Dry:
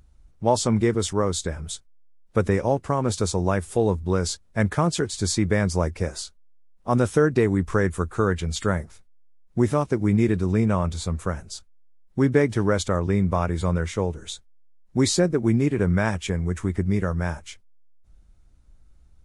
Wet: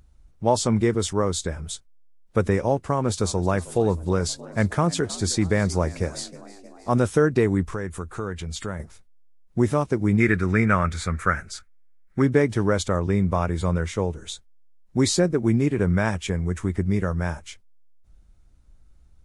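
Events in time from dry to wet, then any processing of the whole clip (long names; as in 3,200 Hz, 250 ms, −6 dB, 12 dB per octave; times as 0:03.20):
0:02.86–0:07.05: echo with shifted repeats 314 ms, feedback 62%, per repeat +62 Hz, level −20 dB
0:07.64–0:08.80: downward compressor 2 to 1, threshold −31 dBFS
0:10.20–0:12.22: flat-topped bell 1,700 Hz +14 dB 1.1 octaves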